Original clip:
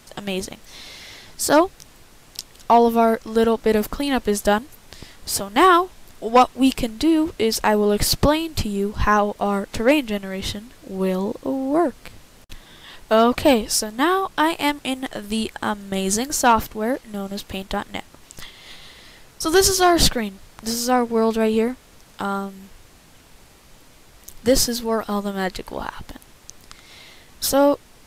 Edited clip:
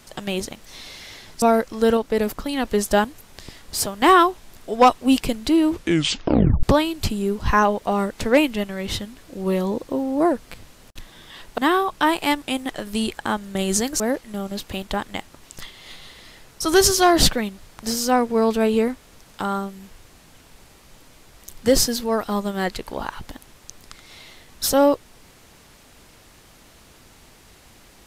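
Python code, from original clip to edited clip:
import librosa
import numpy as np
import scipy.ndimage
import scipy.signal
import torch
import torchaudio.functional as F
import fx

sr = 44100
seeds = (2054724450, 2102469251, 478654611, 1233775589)

y = fx.edit(x, sr, fx.cut(start_s=1.42, length_s=1.54),
    fx.clip_gain(start_s=3.51, length_s=0.68, db=-3.0),
    fx.tape_stop(start_s=7.25, length_s=0.92),
    fx.cut(start_s=13.12, length_s=0.83),
    fx.cut(start_s=16.37, length_s=0.43), tone=tone)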